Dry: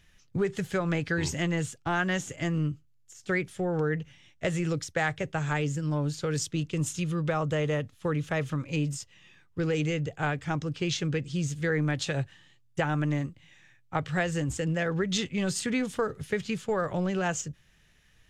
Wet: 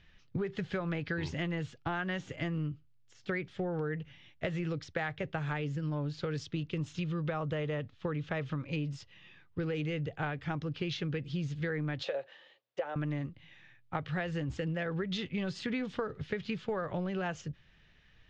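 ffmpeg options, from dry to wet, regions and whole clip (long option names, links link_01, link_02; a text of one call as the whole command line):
ffmpeg -i in.wav -filter_complex "[0:a]asettb=1/sr,asplit=3[link_01][link_02][link_03];[link_01]atrim=end=12.034[link_04];[link_02]atrim=start=12.03:end=12.96,asetpts=PTS-STARTPTS,afade=type=in:duration=0.004:curve=qsin,afade=type=out:start_time=0.926:duration=0.004:curve=qsin,acompressor=threshold=-30dB:ratio=6:attack=3.2:release=140:knee=1:detection=peak,highpass=frequency=530:width_type=q:width=5.1[link_05];[link_03]atrim=start=12.956[link_06];[link_04][link_05]acrossfade=duration=0.004:curve1=hsin:curve2=qsin[link_07];[link_07][link_06]acrossfade=duration=0.004:curve1=qsin:curve2=hsin,acompressor=threshold=-32dB:ratio=4,lowpass=frequency=4400:width=0.5412,lowpass=frequency=4400:width=1.3066" out.wav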